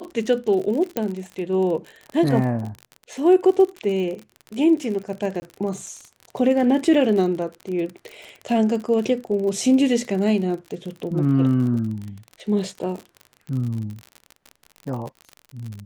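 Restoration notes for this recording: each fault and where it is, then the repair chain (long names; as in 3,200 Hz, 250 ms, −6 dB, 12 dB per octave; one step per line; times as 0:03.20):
surface crackle 47 per second −29 dBFS
0:00.97: click −9 dBFS
0:05.40–0:05.42: drop-out 20 ms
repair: click removal
repair the gap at 0:05.40, 20 ms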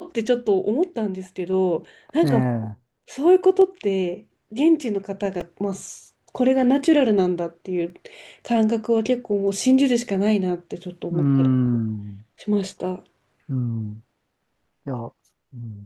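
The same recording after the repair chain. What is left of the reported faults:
none of them is left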